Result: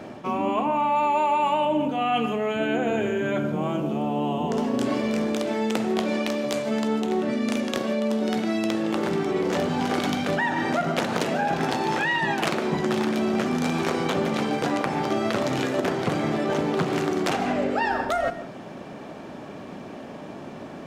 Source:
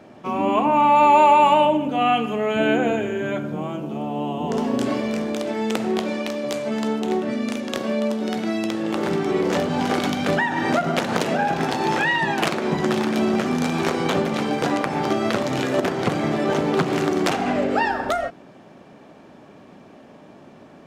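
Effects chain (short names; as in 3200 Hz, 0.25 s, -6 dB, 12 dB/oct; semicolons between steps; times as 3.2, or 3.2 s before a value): reverse; compressor 4:1, threshold -31 dBFS, peak gain reduction 16.5 dB; reverse; reverb, pre-delay 0.105 s, DRR 15.5 dB; gain +7.5 dB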